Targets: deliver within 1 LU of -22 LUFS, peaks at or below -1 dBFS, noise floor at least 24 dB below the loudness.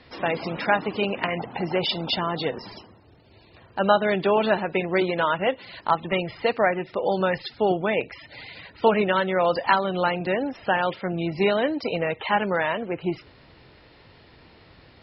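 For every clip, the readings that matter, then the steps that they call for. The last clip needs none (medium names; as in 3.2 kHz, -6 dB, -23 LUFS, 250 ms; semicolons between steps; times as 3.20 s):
loudness -24.5 LUFS; peak level -5.0 dBFS; loudness target -22.0 LUFS
-> trim +2.5 dB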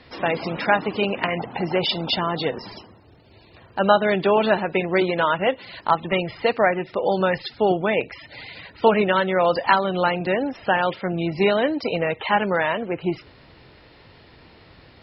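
loudness -22.0 LUFS; peak level -2.5 dBFS; noise floor -51 dBFS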